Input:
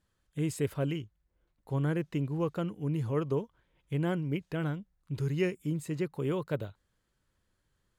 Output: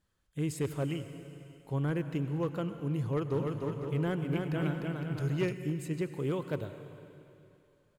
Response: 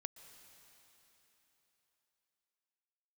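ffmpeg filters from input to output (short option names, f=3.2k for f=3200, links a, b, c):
-filter_complex "[1:a]atrim=start_sample=2205,asetrate=57330,aresample=44100[a];[0:a][a]afir=irnorm=-1:irlink=0,volume=30.5dB,asoftclip=hard,volume=-30.5dB,asplit=3[b][c][d];[b]afade=t=out:st=3.33:d=0.02[e];[c]aecho=1:1:300|510|657|759.9|831.9:0.631|0.398|0.251|0.158|0.1,afade=t=in:st=3.33:d=0.02,afade=t=out:st=5.52:d=0.02[f];[d]afade=t=in:st=5.52:d=0.02[g];[e][f][g]amix=inputs=3:normalize=0,volume=5.5dB"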